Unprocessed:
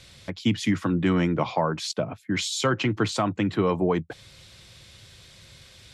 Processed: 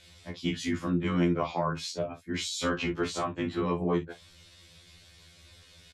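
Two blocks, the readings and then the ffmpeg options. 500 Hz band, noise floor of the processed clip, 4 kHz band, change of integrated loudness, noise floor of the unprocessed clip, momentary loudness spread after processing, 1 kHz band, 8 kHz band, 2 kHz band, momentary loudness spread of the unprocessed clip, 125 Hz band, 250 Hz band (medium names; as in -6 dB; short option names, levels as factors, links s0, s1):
-5.0 dB, -56 dBFS, -5.5 dB, -5.0 dB, -52 dBFS, 8 LU, -5.0 dB, -5.5 dB, -5.5 dB, 6 LU, -6.0 dB, -5.0 dB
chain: -af "aecho=1:1:26|51:0.376|0.211,tremolo=f=49:d=0.824,afftfilt=real='re*2*eq(mod(b,4),0)':imag='im*2*eq(mod(b,4),0)':win_size=2048:overlap=0.75"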